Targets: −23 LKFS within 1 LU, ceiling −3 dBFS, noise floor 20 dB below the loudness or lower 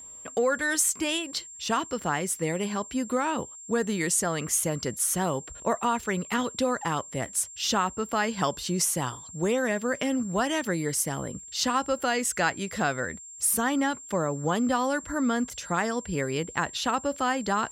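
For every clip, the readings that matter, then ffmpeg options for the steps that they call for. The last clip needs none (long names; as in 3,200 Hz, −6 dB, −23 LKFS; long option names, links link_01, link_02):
interfering tone 7,400 Hz; level of the tone −42 dBFS; integrated loudness −27.5 LKFS; sample peak −11.0 dBFS; target loudness −23.0 LKFS
→ -af "bandreject=frequency=7400:width=30"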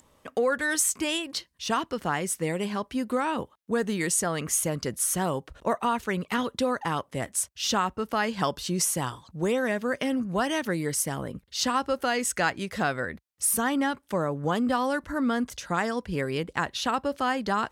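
interfering tone none found; integrated loudness −27.5 LKFS; sample peak −11.0 dBFS; target loudness −23.0 LKFS
→ -af "volume=4.5dB"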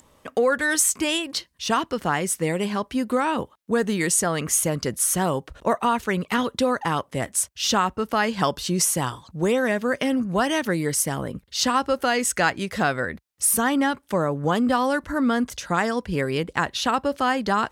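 integrated loudness −23.0 LKFS; sample peak −6.5 dBFS; background noise floor −61 dBFS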